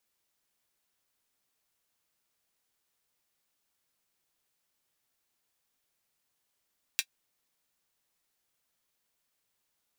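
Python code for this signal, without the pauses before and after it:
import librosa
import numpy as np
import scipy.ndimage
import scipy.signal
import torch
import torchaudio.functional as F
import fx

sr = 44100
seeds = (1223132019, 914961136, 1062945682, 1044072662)

y = fx.drum_hat(sr, length_s=0.24, from_hz=2400.0, decay_s=0.07)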